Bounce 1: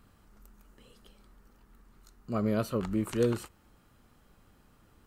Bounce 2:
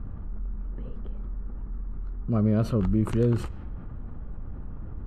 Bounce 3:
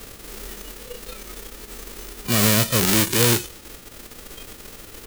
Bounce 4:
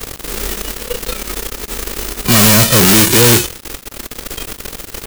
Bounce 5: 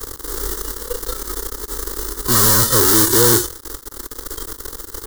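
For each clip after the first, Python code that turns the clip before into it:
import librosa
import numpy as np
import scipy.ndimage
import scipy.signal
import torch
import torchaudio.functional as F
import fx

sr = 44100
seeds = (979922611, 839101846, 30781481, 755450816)

y1 = fx.env_lowpass(x, sr, base_hz=1300.0, full_db=-29.0)
y1 = fx.riaa(y1, sr, side='playback')
y1 = fx.env_flatten(y1, sr, amount_pct=50)
y1 = y1 * 10.0 ** (-3.0 / 20.0)
y2 = fx.envelope_flatten(y1, sr, power=0.1)
y2 = fx.noise_reduce_blind(y2, sr, reduce_db=11)
y2 = fx.low_shelf_res(y2, sr, hz=530.0, db=7.0, q=1.5)
y2 = y2 * 10.0 ** (3.0 / 20.0)
y3 = fx.leveller(y2, sr, passes=5)
y3 = y3 * 10.0 ** (-2.5 / 20.0)
y4 = fx.fixed_phaser(y3, sr, hz=670.0, stages=6)
y4 = y4 * 10.0 ** (-2.0 / 20.0)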